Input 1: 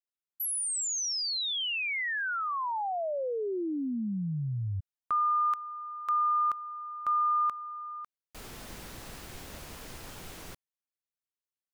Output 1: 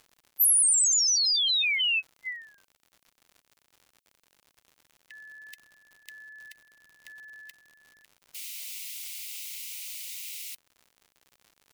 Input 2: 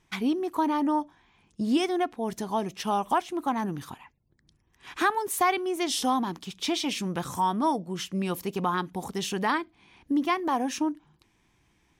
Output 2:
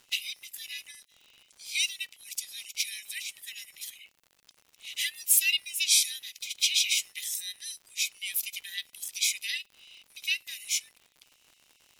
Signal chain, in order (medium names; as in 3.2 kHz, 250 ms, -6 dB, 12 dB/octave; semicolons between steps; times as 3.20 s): split-band scrambler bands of 500 Hz; steep high-pass 2.1 kHz 96 dB/octave; treble shelf 8.5 kHz +8.5 dB; crackle 120 per s -50 dBFS; trim +6 dB